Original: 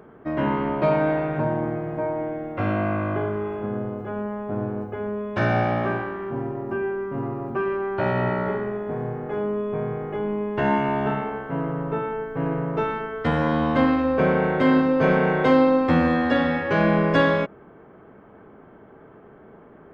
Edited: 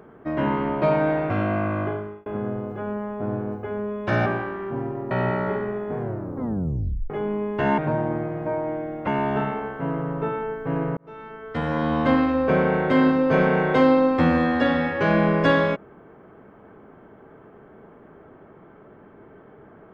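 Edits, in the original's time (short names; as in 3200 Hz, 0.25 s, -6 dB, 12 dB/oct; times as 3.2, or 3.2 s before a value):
1.3–2.59 move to 10.77
3.11–3.55 fade out
5.55–5.86 cut
6.71–8.1 cut
8.97 tape stop 1.12 s
12.67–13.71 fade in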